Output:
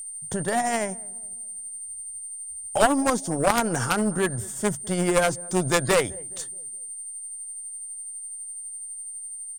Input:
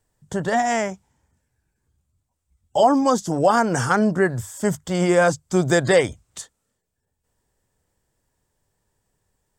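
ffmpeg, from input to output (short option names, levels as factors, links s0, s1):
-filter_complex "[0:a]asplit=2[s0][s1];[s1]acompressor=threshold=0.0316:ratio=6,volume=1.12[s2];[s0][s2]amix=inputs=2:normalize=0,aeval=exprs='val(0)+0.0447*sin(2*PI*8900*n/s)':c=same,tremolo=f=12:d=0.3,asplit=2[s3][s4];[s4]adelay=209,lowpass=f=870:p=1,volume=0.0891,asplit=2[s5][s6];[s6]adelay=209,lowpass=f=870:p=1,volume=0.49,asplit=2[s7][s8];[s8]adelay=209,lowpass=f=870:p=1,volume=0.49,asplit=2[s9][s10];[s10]adelay=209,lowpass=f=870:p=1,volume=0.49[s11];[s3][s5][s7][s9][s11]amix=inputs=5:normalize=0,aeval=exprs='0.708*(cos(1*acos(clip(val(0)/0.708,-1,1)))-cos(1*PI/2))+0.0794*(cos(3*acos(clip(val(0)/0.708,-1,1)))-cos(3*PI/2))+0.316*(cos(4*acos(clip(val(0)/0.708,-1,1)))-cos(4*PI/2))+0.178*(cos(6*acos(clip(val(0)/0.708,-1,1)))-cos(6*PI/2))':c=same,volume=0.794"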